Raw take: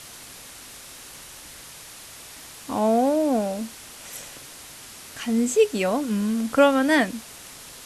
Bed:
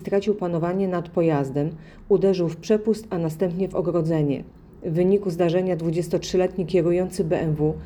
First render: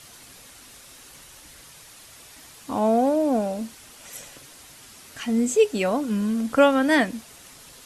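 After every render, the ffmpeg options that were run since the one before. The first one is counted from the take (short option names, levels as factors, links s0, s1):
-af "afftdn=nr=6:nf=-43"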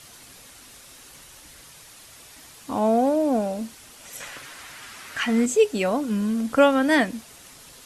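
-filter_complex "[0:a]asettb=1/sr,asplit=3[s0][s1][s2];[s0]atrim=end=4.204[s3];[s1]atrim=start=4.2:end=5.46,asetpts=PTS-STARTPTS,afade=t=in:d=0.004:c=qsin,afade=t=out:st=1.256:d=0.004:c=qsin,equalizer=f=1600:t=o:w=2.1:g=12.5[s4];[s2]atrim=start=5.456[s5];[s3][s4]acrossfade=d=0.004:c1=hsin:c2=qsin[s6];[s6][s5]acrossfade=d=0.004:c1=qsin:c2=hsin"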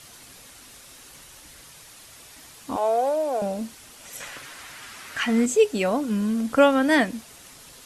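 -filter_complex "[0:a]asettb=1/sr,asplit=3[s0][s1][s2];[s0]atrim=end=2.764[s3];[s1]atrim=start=2.76:end=3.42,asetpts=PTS-STARTPTS,afade=t=in:d=0.004:c=qsin,afade=t=out:st=0.656:d=0.004:c=qsin,highpass=f=440:w=0.5412,highpass=f=440:w=1.3066[s4];[s2]atrim=start=3.416[s5];[s3][s4]acrossfade=d=0.004:c1=hsin:c2=qsin[s6];[s6][s5]acrossfade=d=0.004:c1=qsin:c2=hsin"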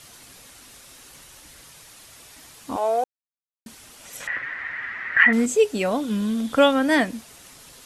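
-filter_complex "[0:a]asettb=1/sr,asplit=3[s0][s1][s2];[s0]atrim=end=4.274[s3];[s1]atrim=start=4.27:end=5.33,asetpts=PTS-STARTPTS,afade=t=in:d=0.004:c=qsin,afade=t=out:st=1.056:d=0.004:c=qsin,lowpass=f=1900:t=q:w=9.6[s4];[s2]atrim=start=5.326[s5];[s3][s4]acrossfade=d=0.004:c1=hsin:c2=qsin[s6];[s6][s5]acrossfade=d=0.004:c1=qsin:c2=hsin,asettb=1/sr,asplit=3[s7][s8][s9];[s7]atrim=end=5.914[s10];[s8]atrim=start=5.91:end=6.73,asetpts=PTS-STARTPTS,afade=t=in:d=0.004:c=qsin,afade=t=out:st=0.816:d=0.004:c=qsin,equalizer=f=3500:t=o:w=0.25:g=12.5[s11];[s9]atrim=start=6.726[s12];[s10][s11]acrossfade=d=0.004:c1=hsin:c2=qsin[s13];[s13][s12]acrossfade=d=0.004:c1=qsin:c2=hsin,asplit=3[s14][s15][s16];[s14]atrim=end=3.04,asetpts=PTS-STARTPTS,afade=t=out:st=3.036:d=0.004:c=hsin[s17];[s15]atrim=start=3.04:end=3.66,asetpts=PTS-STARTPTS,volume=0[s18];[s16]atrim=start=3.66,asetpts=PTS-STARTPTS,afade=t=in:d=0.004:c=hsin[s19];[s17][s18][s19]concat=n=3:v=0:a=1"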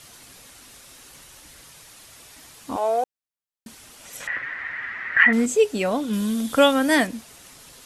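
-filter_complex "[0:a]asettb=1/sr,asplit=3[s0][s1][s2];[s0]atrim=end=6.134[s3];[s1]atrim=start=6.13:end=7.07,asetpts=PTS-STARTPTS,afade=t=in:d=0.004:c=qsin,afade=t=out:st=0.936:d=0.004:c=qsin,highshelf=f=6500:g=11.5[s4];[s2]atrim=start=7.066[s5];[s3][s4]acrossfade=d=0.004:c1=hsin:c2=qsin[s6];[s6][s5]acrossfade=d=0.004:c1=qsin:c2=hsin"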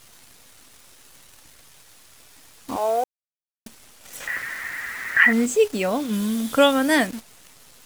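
-af "acrusher=bits=7:dc=4:mix=0:aa=0.000001"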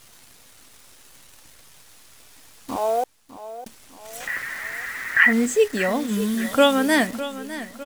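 -af "aecho=1:1:605|1210|1815|2420|3025:0.2|0.0998|0.0499|0.0249|0.0125"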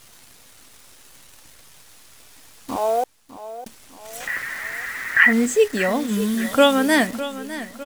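-af "volume=1.19"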